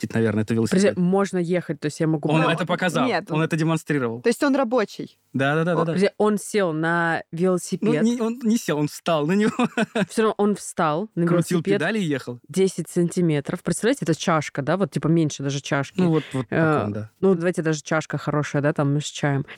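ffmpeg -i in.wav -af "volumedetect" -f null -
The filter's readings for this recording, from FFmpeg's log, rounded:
mean_volume: -21.8 dB
max_volume: -7.0 dB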